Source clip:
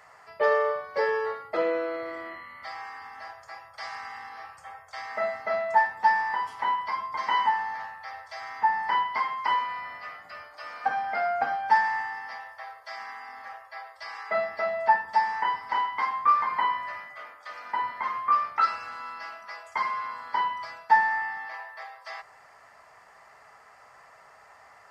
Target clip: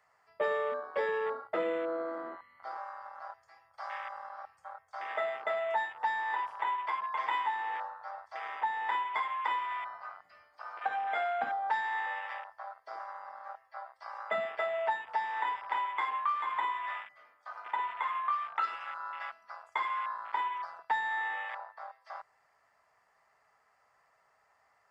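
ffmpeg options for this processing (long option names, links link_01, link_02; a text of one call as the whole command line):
ffmpeg -i in.wav -filter_complex "[0:a]afwtdn=0.0158,acrossover=split=260|3000[link_01][link_02][link_03];[link_02]acompressor=threshold=-30dB:ratio=6[link_04];[link_01][link_04][link_03]amix=inputs=3:normalize=0" out.wav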